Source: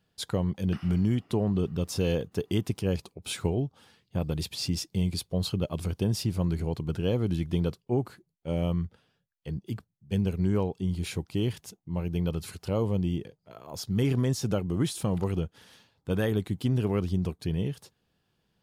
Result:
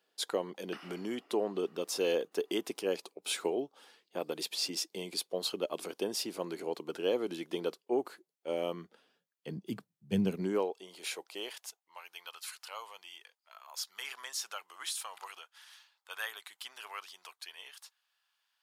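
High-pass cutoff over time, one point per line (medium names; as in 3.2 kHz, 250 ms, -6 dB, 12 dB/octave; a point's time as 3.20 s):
high-pass 24 dB/octave
8.59 s 330 Hz
10.16 s 140 Hz
10.81 s 490 Hz
11.34 s 490 Hz
12.00 s 1 kHz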